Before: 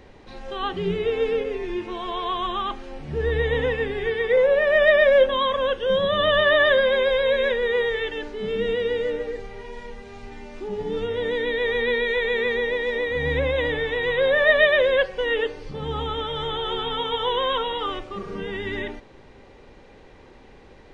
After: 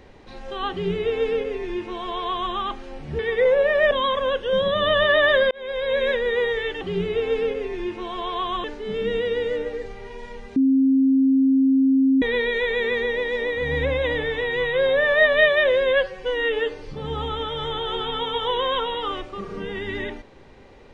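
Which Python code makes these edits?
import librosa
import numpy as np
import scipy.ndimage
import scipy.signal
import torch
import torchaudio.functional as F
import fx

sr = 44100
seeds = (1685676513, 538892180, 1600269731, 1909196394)

y = fx.edit(x, sr, fx.duplicate(start_s=0.71, length_s=1.83, to_s=8.18),
    fx.cut(start_s=3.19, length_s=0.92),
    fx.cut(start_s=4.83, length_s=0.45),
    fx.fade_in_span(start_s=6.88, length_s=0.52),
    fx.bleep(start_s=10.1, length_s=1.66, hz=267.0, db=-14.0),
    fx.stretch_span(start_s=13.96, length_s=1.52, factor=1.5), tone=tone)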